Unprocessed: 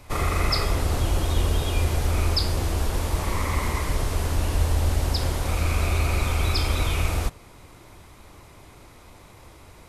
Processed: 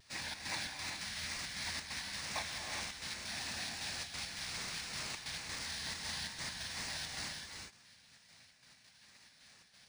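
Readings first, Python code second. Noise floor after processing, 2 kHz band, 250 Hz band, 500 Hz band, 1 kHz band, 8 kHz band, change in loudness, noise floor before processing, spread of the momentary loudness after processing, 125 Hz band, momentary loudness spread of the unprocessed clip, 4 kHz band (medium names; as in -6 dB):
-64 dBFS, -8.5 dB, -21.0 dB, -23.0 dB, -17.0 dB, -7.5 dB, -15.0 dB, -49 dBFS, 20 LU, -30.0 dB, 3 LU, -7.5 dB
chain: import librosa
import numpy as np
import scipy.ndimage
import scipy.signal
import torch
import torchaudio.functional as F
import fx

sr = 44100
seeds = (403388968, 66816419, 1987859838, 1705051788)

y = scipy.signal.sosfilt(scipy.signal.butter(2, 540.0, 'highpass', fs=sr, output='sos'), x)
y = fx.spec_gate(y, sr, threshold_db=-15, keep='weak')
y = fx.rider(y, sr, range_db=10, speed_s=0.5)
y = fx.fixed_phaser(y, sr, hz=2000.0, stages=8)
y = fx.step_gate(y, sr, bpm=134, pattern='xxx.xx.x.x', floor_db=-60.0, edge_ms=4.5)
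y = fx.wow_flutter(y, sr, seeds[0], rate_hz=2.1, depth_cents=100.0)
y = fx.rev_gated(y, sr, seeds[1], gate_ms=430, shape='rising', drr_db=1.0)
y = np.interp(np.arange(len(y)), np.arange(len(y))[::3], y[::3])
y = y * librosa.db_to_amplitude(3.0)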